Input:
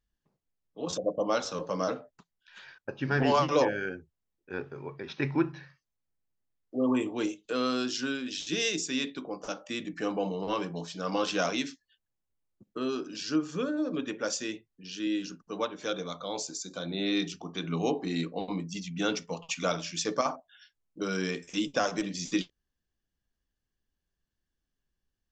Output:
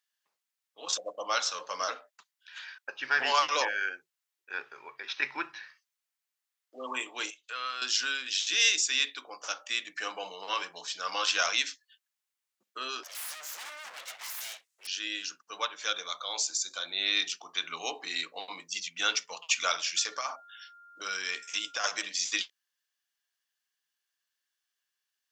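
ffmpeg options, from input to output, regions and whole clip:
ffmpeg -i in.wav -filter_complex "[0:a]asettb=1/sr,asplit=3[link_01][link_02][link_03];[link_01]atrim=end=7.304[link_04];[link_02]atrim=start=7.3:end=7.82,asetpts=PTS-STARTPTS,afade=type=in:duration=0.004:curve=qsin,afade=type=out:start_time=0.516:duration=0.004:curve=qsin,acrossover=split=3100[link_05][link_06];[link_06]acompressor=threshold=-53dB:ratio=4:attack=1:release=60[link_07];[link_05][link_07]amix=inputs=2:normalize=0,highpass=frequency=1400:poles=1,highshelf=frequency=3600:gain=-5.5[link_08];[link_03]atrim=start=7.816[link_09];[link_04][link_08]acrossfade=duration=0.004:curve1=hsin:curve2=qsin[link_10];[link_10][link_09]acrossfade=duration=0.004:curve1=qsin:curve2=hsin,asettb=1/sr,asplit=3[link_11][link_12][link_13];[link_11]atrim=end=13.034[link_14];[link_12]atrim=start=13.03:end=14.87,asetpts=PTS-STARTPTS,afade=type=in:duration=0.004:curve=qsin,afade=type=out:start_time=1.836:duration=0.004:curve=qsin,equalizer=frequency=7400:width_type=o:width=1.2:gain=12.5,aeval=exprs='(tanh(50.1*val(0)+0.05)-tanh(0.05))/50.1':channel_layout=same,aeval=exprs='abs(val(0))':channel_layout=same[link_15];[link_13]atrim=start=14.866[link_16];[link_14][link_15]acrossfade=duration=0.004:curve1=hsin:curve2=qsin[link_17];[link_17][link_16]acrossfade=duration=0.004:curve1=qsin:curve2=hsin,asettb=1/sr,asplit=3[link_18][link_19][link_20];[link_18]atrim=end=19.964[link_21];[link_19]atrim=start=19.96:end=21.84,asetpts=PTS-STARTPTS,afade=type=in:duration=0.004:curve=qsin,afade=type=out:start_time=1.876:duration=0.004:curve=qsin,acompressor=threshold=-29dB:ratio=5:attack=3.2:release=140:knee=1:detection=peak,aeval=exprs='val(0)+0.00158*sin(2*PI*1400*n/s)':channel_layout=same[link_22];[link_20]atrim=start=21.836[link_23];[link_21][link_22]acrossfade=duration=0.004:curve1=hsin:curve2=qsin[link_24];[link_24][link_23]acrossfade=duration=0.004:curve1=qsin:curve2=hsin,highpass=1400,acontrast=90" out.wav

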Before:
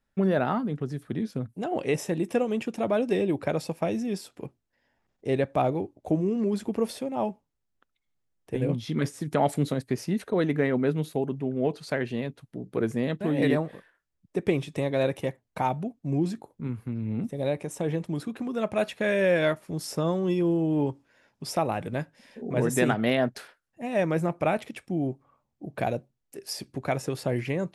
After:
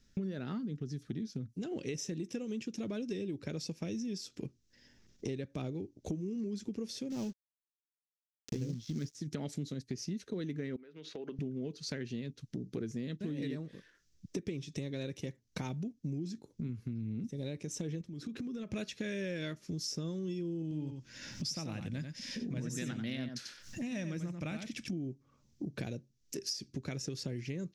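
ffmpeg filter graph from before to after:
ffmpeg -i in.wav -filter_complex "[0:a]asettb=1/sr,asplit=3[link_01][link_02][link_03];[link_01]atrim=end=7.104[link_04];[link_02]atrim=start=7.1:end=9.15,asetpts=PTS-STARTPTS,afade=type=in:duration=0.004:curve=qsin,afade=type=out:start_time=2.046:duration=0.004:curve=qsin,acrusher=bits=5:mode=log:mix=0:aa=0.000001,equalizer=frequency=150:width=0.49:gain=5,aeval=exprs='sgn(val(0))*max(abs(val(0))-0.00708,0)':channel_layout=same[link_05];[link_03]atrim=start=9.146[link_06];[link_04][link_05]acrossfade=duration=0.004:curve1=hsin:curve2=qsin[link_07];[link_07][link_06]acrossfade=duration=0.004:curve1=qsin:curve2=hsin,asettb=1/sr,asplit=3[link_08][link_09][link_10];[link_08]atrim=end=10.764[link_11];[link_09]atrim=start=10.76:end=11.39,asetpts=PTS-STARTPTS,afade=type=in:duration=0.004:curve=qsin,afade=type=out:start_time=0.626:duration=0.004:curve=qsin,highpass=600,lowpass=2500,acompressor=threshold=-41dB:ratio=16:attack=3.2:release=140:knee=1:detection=peak[link_12];[link_10]atrim=start=11.386[link_13];[link_11][link_12]acrossfade=duration=0.004:curve1=hsin:curve2=qsin[link_14];[link_14][link_13]acrossfade=duration=0.004:curve1=qsin:curve2=hsin,asettb=1/sr,asplit=3[link_15][link_16][link_17];[link_15]atrim=end=18.014[link_18];[link_16]atrim=start=18.01:end=18.74,asetpts=PTS-STARTPTS,afade=type=in:duration=0.004:curve=qsin,afade=type=out:start_time=0.726:duration=0.004:curve=qsin,equalizer=frequency=7800:width=0.48:gain=-5.5,acompressor=threshold=-40dB:ratio=5:attack=3.2:release=140:knee=1:detection=peak[link_19];[link_17]atrim=start=18.736[link_20];[link_18][link_19]acrossfade=duration=0.004:curve1=hsin:curve2=qsin[link_21];[link_21][link_20]acrossfade=duration=0.004:curve1=qsin:curve2=hsin,asettb=1/sr,asplit=3[link_22][link_23][link_24];[link_22]atrim=end=20.624[link_25];[link_23]atrim=start=20.62:end=24.93,asetpts=PTS-STARTPTS,afade=type=in:duration=0.004:curve=qsin,afade=type=out:start_time=4.306:duration=0.004:curve=qsin,equalizer=frequency=410:width_type=o:width=0.47:gain=-10.5,acompressor=mode=upward:threshold=-41dB:ratio=2.5:attack=3.2:release=140:knee=2.83:detection=peak,aecho=1:1:91:0.398,atrim=end_sample=190071[link_26];[link_24]atrim=start=24.926[link_27];[link_25][link_26]acrossfade=duration=0.004:curve1=hsin:curve2=qsin[link_28];[link_28][link_27]acrossfade=duration=0.004:curve1=qsin:curve2=hsin,firequalizer=gain_entry='entry(220,0);entry(410,-4);entry(710,-19);entry(1500,-8);entry(5900,10);entry(9000,-9)':delay=0.05:min_phase=1,acompressor=threshold=-50dB:ratio=6,volume=12dB" out.wav

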